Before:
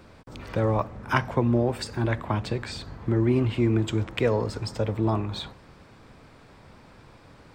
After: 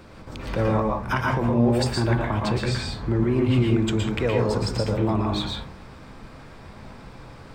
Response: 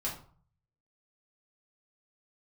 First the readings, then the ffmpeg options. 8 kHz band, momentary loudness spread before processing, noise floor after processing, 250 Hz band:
+5.5 dB, 11 LU, −44 dBFS, +3.5 dB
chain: -filter_complex "[0:a]alimiter=limit=-18.5dB:level=0:latency=1:release=110,asplit=2[link_01][link_02];[1:a]atrim=start_sample=2205,afade=type=out:start_time=0.15:duration=0.01,atrim=end_sample=7056,adelay=114[link_03];[link_02][link_03]afir=irnorm=-1:irlink=0,volume=-3.5dB[link_04];[link_01][link_04]amix=inputs=2:normalize=0,volume=4dB"

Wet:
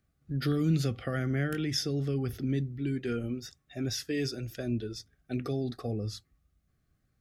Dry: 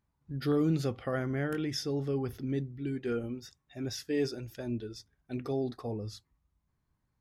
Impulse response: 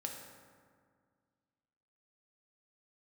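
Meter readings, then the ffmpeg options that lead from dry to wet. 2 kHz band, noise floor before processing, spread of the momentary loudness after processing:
+2.5 dB, −80 dBFS, 9 LU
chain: -filter_complex "[0:a]asuperstop=centerf=940:order=8:qfactor=3.1,acrossover=split=240|1600[link_01][link_02][link_03];[link_02]acompressor=threshold=-40dB:ratio=6[link_04];[link_01][link_04][link_03]amix=inputs=3:normalize=0,volume=5dB"

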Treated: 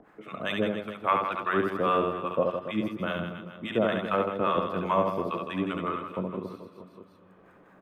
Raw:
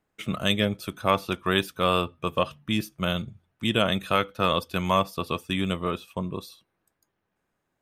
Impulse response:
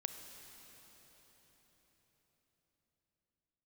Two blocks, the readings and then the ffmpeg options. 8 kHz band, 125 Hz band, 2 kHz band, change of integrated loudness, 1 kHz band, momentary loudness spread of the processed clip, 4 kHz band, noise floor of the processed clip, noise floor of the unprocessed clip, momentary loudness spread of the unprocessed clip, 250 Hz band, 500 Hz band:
below −15 dB, −6.5 dB, −4.0 dB, −2.5 dB, −0.5 dB, 10 LU, −12.0 dB, −57 dBFS, −79 dBFS, 8 LU, −2.5 dB, 0.0 dB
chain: -filter_complex "[0:a]acrossover=split=190 2100:gain=0.2 1 0.0891[link_01][link_02][link_03];[link_01][link_02][link_03]amix=inputs=3:normalize=0,acrossover=split=780[link_04][link_05];[link_04]aeval=exprs='val(0)*(1-1/2+1/2*cos(2*PI*5*n/s))':channel_layout=same[link_06];[link_05]aeval=exprs='val(0)*(1-1/2-1/2*cos(2*PI*5*n/s))':channel_layout=same[link_07];[link_06][link_07]amix=inputs=2:normalize=0,aecho=1:1:70|161|279.3|433.1|633:0.631|0.398|0.251|0.158|0.1,acompressor=mode=upward:threshold=-41dB:ratio=2.5,asplit=2[link_08][link_09];[1:a]atrim=start_sample=2205,asetrate=30429,aresample=44100[link_10];[link_09][link_10]afir=irnorm=-1:irlink=0,volume=-14.5dB[link_11];[link_08][link_11]amix=inputs=2:normalize=0,volume=1.5dB"

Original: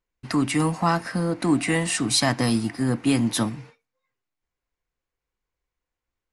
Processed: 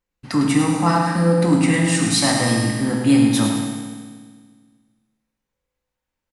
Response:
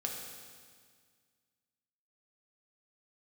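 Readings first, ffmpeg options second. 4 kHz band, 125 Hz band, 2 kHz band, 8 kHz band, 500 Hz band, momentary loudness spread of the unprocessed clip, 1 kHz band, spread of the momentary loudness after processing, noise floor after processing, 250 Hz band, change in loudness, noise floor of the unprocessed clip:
+3.5 dB, +6.5 dB, +4.0 dB, +4.5 dB, +5.5 dB, 6 LU, +4.5 dB, 9 LU, −83 dBFS, +6.5 dB, +5.5 dB, below −85 dBFS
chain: -filter_complex "[0:a]aecho=1:1:105|210|315|420|525|630:0.398|0.203|0.104|0.0528|0.0269|0.0137[link_01];[1:a]atrim=start_sample=2205,asetrate=48510,aresample=44100[link_02];[link_01][link_02]afir=irnorm=-1:irlink=0,volume=2.5dB"

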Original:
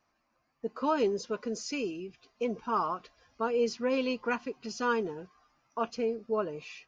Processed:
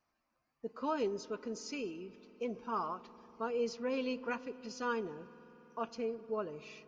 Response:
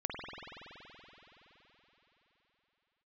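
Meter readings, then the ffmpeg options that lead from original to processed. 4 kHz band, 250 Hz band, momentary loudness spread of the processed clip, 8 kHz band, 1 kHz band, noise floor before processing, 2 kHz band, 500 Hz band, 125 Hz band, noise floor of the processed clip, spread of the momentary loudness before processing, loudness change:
−7.0 dB, −6.0 dB, 13 LU, can't be measured, −7.0 dB, −76 dBFS, −7.0 dB, −6.5 dB, −6.0 dB, −83 dBFS, 11 LU, −6.5 dB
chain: -filter_complex "[0:a]asplit=2[link_01][link_02];[1:a]atrim=start_sample=2205,lowshelf=frequency=280:gain=11[link_03];[link_02][link_03]afir=irnorm=-1:irlink=0,volume=-21dB[link_04];[link_01][link_04]amix=inputs=2:normalize=0,volume=-7.5dB"

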